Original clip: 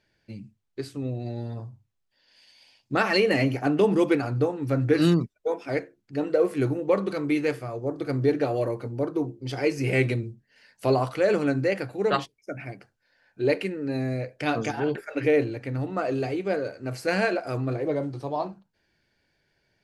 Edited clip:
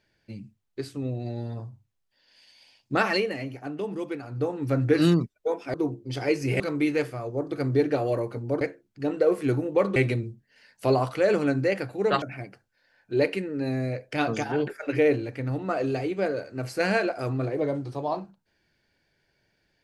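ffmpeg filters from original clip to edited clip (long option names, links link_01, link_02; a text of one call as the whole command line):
ffmpeg -i in.wav -filter_complex "[0:a]asplit=8[link_01][link_02][link_03][link_04][link_05][link_06][link_07][link_08];[link_01]atrim=end=3.34,asetpts=PTS-STARTPTS,afade=type=out:start_time=3.05:duration=0.29:silence=0.281838[link_09];[link_02]atrim=start=3.34:end=4.28,asetpts=PTS-STARTPTS,volume=-11dB[link_10];[link_03]atrim=start=4.28:end=5.742,asetpts=PTS-STARTPTS,afade=type=in:duration=0.29:silence=0.281838[link_11];[link_04]atrim=start=9.098:end=9.962[link_12];[link_05]atrim=start=7.088:end=9.102[link_13];[link_06]atrim=start=5.738:end=7.092[link_14];[link_07]atrim=start=9.958:end=12.222[link_15];[link_08]atrim=start=12.498[link_16];[link_09][link_10][link_11]concat=n=3:v=0:a=1[link_17];[link_17][link_12]acrossfade=duration=0.004:curve1=hsin:curve2=hsin[link_18];[link_18][link_13]acrossfade=duration=0.004:curve1=hsin:curve2=hsin[link_19];[link_19][link_14]acrossfade=duration=0.004:curve1=hsin:curve2=hsin[link_20];[link_20][link_15]acrossfade=duration=0.004:curve1=hsin:curve2=hsin[link_21];[link_21][link_16]acrossfade=duration=0.004:curve1=hsin:curve2=hsin" out.wav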